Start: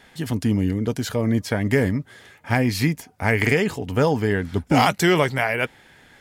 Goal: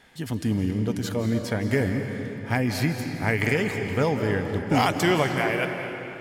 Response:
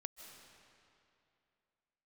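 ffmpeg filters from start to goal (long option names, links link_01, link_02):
-filter_complex "[1:a]atrim=start_sample=2205,asetrate=40131,aresample=44100[link_01];[0:a][link_01]afir=irnorm=-1:irlink=0"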